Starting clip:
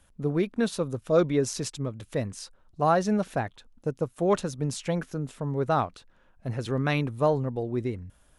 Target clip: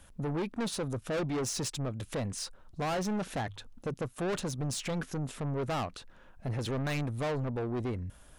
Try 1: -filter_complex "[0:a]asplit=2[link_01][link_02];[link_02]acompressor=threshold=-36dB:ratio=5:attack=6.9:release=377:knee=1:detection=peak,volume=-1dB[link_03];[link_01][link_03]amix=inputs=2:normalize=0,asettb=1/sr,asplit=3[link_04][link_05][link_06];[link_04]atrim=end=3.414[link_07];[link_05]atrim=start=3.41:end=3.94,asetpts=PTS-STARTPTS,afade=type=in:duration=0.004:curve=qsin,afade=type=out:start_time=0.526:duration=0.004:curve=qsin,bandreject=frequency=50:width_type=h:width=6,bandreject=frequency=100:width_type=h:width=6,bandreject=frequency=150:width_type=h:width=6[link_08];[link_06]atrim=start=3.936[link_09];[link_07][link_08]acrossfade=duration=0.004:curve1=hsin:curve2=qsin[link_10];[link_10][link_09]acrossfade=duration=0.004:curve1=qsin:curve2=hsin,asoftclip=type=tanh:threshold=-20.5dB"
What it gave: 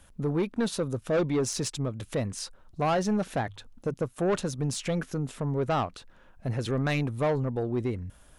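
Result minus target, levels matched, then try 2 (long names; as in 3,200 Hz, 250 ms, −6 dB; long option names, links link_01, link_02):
soft clipping: distortion −7 dB
-filter_complex "[0:a]asplit=2[link_01][link_02];[link_02]acompressor=threshold=-36dB:ratio=5:attack=6.9:release=377:knee=1:detection=peak,volume=-1dB[link_03];[link_01][link_03]amix=inputs=2:normalize=0,asettb=1/sr,asplit=3[link_04][link_05][link_06];[link_04]atrim=end=3.414[link_07];[link_05]atrim=start=3.41:end=3.94,asetpts=PTS-STARTPTS,afade=type=in:duration=0.004:curve=qsin,afade=type=out:start_time=0.526:duration=0.004:curve=qsin,bandreject=frequency=50:width_type=h:width=6,bandreject=frequency=100:width_type=h:width=6,bandreject=frequency=150:width_type=h:width=6[link_08];[link_06]atrim=start=3.936[link_09];[link_07][link_08]acrossfade=duration=0.004:curve1=hsin:curve2=qsin[link_10];[link_10][link_09]acrossfade=duration=0.004:curve1=qsin:curve2=hsin,asoftclip=type=tanh:threshold=-29.5dB"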